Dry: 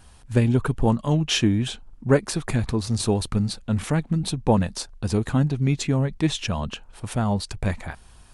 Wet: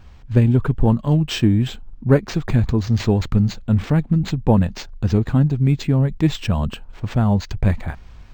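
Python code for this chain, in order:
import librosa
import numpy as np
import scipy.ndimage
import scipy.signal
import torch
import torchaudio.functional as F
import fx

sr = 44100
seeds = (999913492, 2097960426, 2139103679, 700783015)

p1 = fx.low_shelf(x, sr, hz=270.0, db=8.0)
p2 = fx.rider(p1, sr, range_db=3, speed_s=0.5)
p3 = p1 + F.gain(torch.from_numpy(p2), 0.0).numpy()
p4 = np.interp(np.arange(len(p3)), np.arange(len(p3))[::4], p3[::4])
y = F.gain(torch.from_numpy(p4), -6.0).numpy()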